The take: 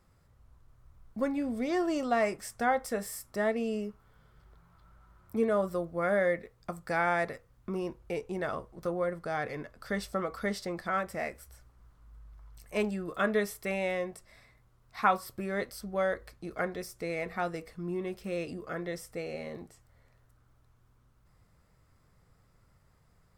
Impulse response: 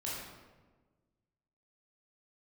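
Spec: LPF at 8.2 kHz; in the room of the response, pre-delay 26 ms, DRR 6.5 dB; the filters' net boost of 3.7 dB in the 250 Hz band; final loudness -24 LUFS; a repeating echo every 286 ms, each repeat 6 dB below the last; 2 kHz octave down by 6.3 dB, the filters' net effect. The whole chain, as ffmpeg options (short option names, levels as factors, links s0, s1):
-filter_complex "[0:a]lowpass=8200,equalizer=f=250:t=o:g=5,equalizer=f=2000:t=o:g=-8.5,aecho=1:1:286|572|858|1144|1430|1716:0.501|0.251|0.125|0.0626|0.0313|0.0157,asplit=2[s0][s1];[1:a]atrim=start_sample=2205,adelay=26[s2];[s1][s2]afir=irnorm=-1:irlink=0,volume=0.355[s3];[s0][s3]amix=inputs=2:normalize=0,volume=2.11"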